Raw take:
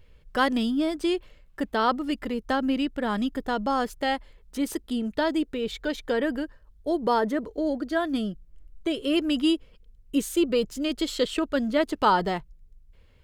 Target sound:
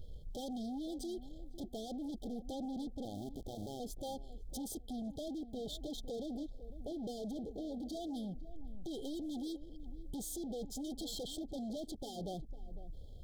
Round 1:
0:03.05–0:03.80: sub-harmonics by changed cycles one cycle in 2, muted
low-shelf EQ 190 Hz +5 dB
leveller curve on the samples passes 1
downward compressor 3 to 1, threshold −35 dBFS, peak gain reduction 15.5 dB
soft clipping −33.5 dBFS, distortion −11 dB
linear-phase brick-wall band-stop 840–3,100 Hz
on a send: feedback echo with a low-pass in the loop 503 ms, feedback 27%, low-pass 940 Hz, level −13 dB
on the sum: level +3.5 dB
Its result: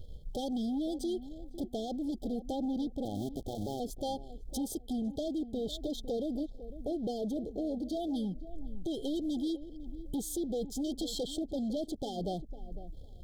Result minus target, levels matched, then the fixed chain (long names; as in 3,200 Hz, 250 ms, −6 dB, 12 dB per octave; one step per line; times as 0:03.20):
soft clipping: distortion −6 dB
0:03.05–0:03.80: sub-harmonics by changed cycles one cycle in 2, muted
low-shelf EQ 190 Hz +5 dB
leveller curve on the samples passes 1
downward compressor 3 to 1, threshold −35 dBFS, peak gain reduction 15.5 dB
soft clipping −43 dBFS, distortion −5 dB
linear-phase brick-wall band-stop 840–3,100 Hz
on a send: feedback echo with a low-pass in the loop 503 ms, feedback 27%, low-pass 940 Hz, level −13 dB
on the sum: level +3.5 dB